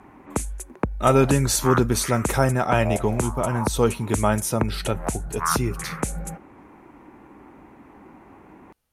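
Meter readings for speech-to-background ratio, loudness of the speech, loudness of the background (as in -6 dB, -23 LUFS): 6.5 dB, -23.0 LUFS, -29.5 LUFS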